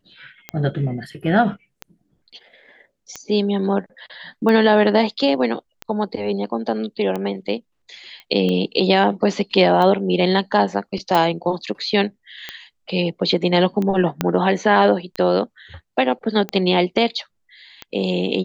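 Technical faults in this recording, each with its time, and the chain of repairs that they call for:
tick 45 rpm -13 dBFS
8.2 pop -25 dBFS
11.15 pop
14.21 pop -4 dBFS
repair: de-click

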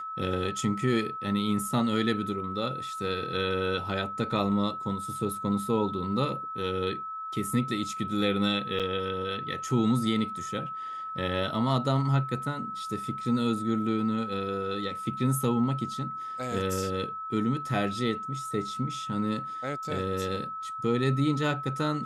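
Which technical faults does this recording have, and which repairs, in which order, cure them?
tone 1300 Hz -34 dBFS
8.79–8.8 gap 7 ms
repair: notch 1300 Hz, Q 30; interpolate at 8.79, 7 ms

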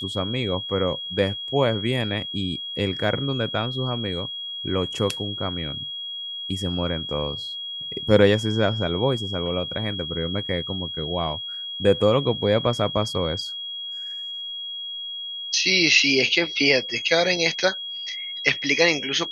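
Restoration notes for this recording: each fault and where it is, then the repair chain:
tone 3300 Hz -30 dBFS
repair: notch 3300 Hz, Q 30

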